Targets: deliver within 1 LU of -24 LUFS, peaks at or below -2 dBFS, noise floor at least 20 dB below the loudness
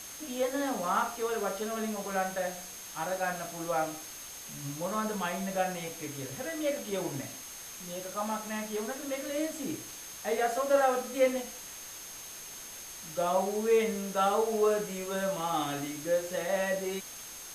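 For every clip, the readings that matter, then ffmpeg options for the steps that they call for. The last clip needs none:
steady tone 6400 Hz; tone level -46 dBFS; noise floor -45 dBFS; noise floor target -53 dBFS; loudness -32.5 LUFS; peak -13.5 dBFS; loudness target -24.0 LUFS
-> -af "bandreject=f=6.4k:w=30"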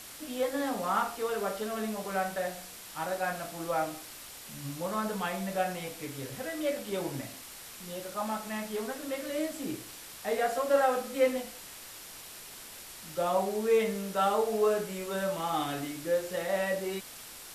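steady tone none; noise floor -47 dBFS; noise floor target -52 dBFS
-> -af "afftdn=nr=6:nf=-47"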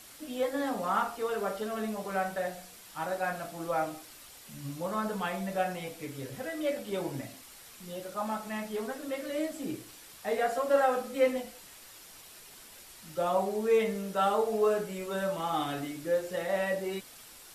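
noise floor -52 dBFS; loudness -32.0 LUFS; peak -14.0 dBFS; loudness target -24.0 LUFS
-> -af "volume=8dB"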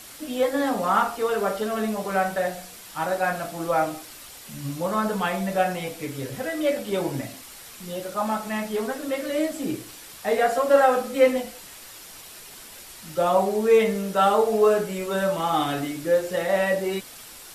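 loudness -24.0 LUFS; peak -6.0 dBFS; noise floor -44 dBFS

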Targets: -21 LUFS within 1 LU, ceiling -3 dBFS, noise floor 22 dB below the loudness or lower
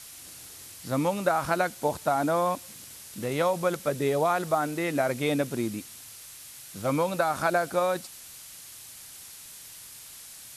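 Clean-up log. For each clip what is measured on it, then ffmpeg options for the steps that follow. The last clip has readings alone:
noise floor -46 dBFS; noise floor target -50 dBFS; loudness -27.5 LUFS; peak -11.5 dBFS; loudness target -21.0 LUFS
-> -af "afftdn=nr=6:nf=-46"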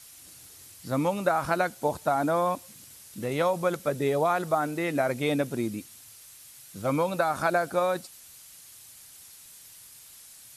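noise floor -50 dBFS; loudness -27.5 LUFS; peak -11.5 dBFS; loudness target -21.0 LUFS
-> -af "volume=6.5dB"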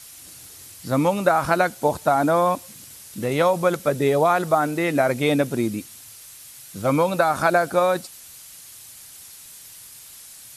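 loudness -21.0 LUFS; peak -5.0 dBFS; noise floor -44 dBFS

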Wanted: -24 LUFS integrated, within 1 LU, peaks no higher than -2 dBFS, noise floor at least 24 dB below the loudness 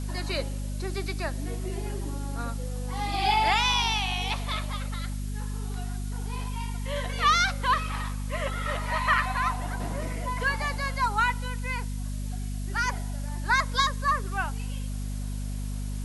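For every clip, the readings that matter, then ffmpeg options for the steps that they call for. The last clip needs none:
hum 50 Hz; harmonics up to 250 Hz; hum level -29 dBFS; noise floor -32 dBFS; noise floor target -53 dBFS; loudness -28.5 LUFS; peak -10.0 dBFS; loudness target -24.0 LUFS
-> -af "bandreject=f=50:t=h:w=6,bandreject=f=100:t=h:w=6,bandreject=f=150:t=h:w=6,bandreject=f=200:t=h:w=6,bandreject=f=250:t=h:w=6"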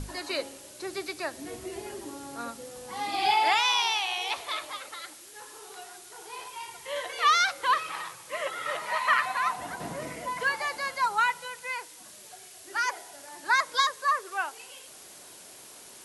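hum none; noise floor -49 dBFS; noise floor target -53 dBFS
-> -af "afftdn=nr=6:nf=-49"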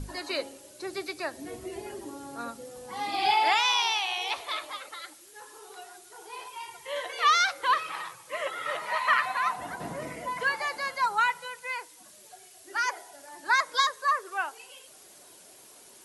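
noise floor -53 dBFS; loudness -28.5 LUFS; peak -10.5 dBFS; loudness target -24.0 LUFS
-> -af "volume=4.5dB"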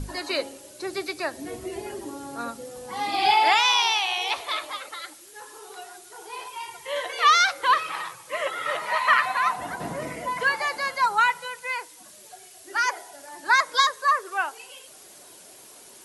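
loudness -24.0 LUFS; peak -6.0 dBFS; noise floor -48 dBFS

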